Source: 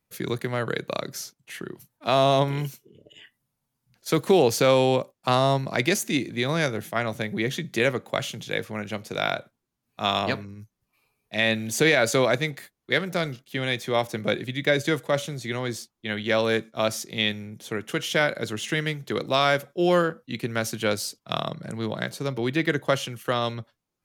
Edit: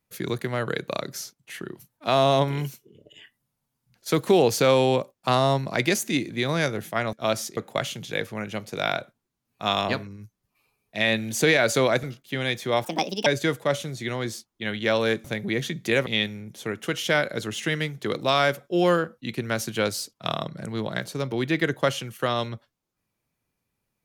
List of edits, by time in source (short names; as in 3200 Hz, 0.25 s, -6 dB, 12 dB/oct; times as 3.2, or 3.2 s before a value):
7.13–7.95 swap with 16.68–17.12
12.41–13.25 cut
14.06–14.7 speed 151%